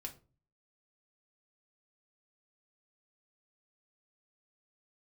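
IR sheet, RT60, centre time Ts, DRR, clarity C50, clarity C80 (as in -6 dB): 0.35 s, 10 ms, 1.0 dB, 14.0 dB, 20.0 dB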